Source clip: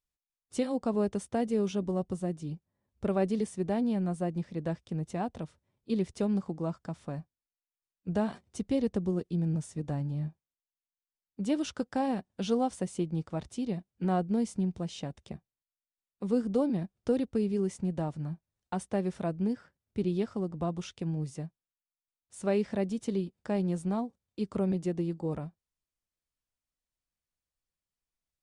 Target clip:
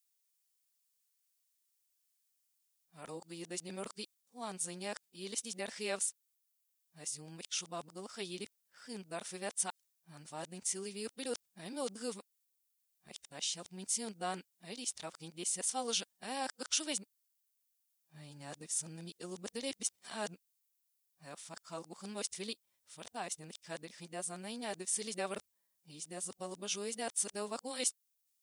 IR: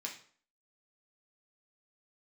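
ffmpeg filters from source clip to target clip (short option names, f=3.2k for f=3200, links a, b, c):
-af "areverse,aderivative,volume=12.5dB"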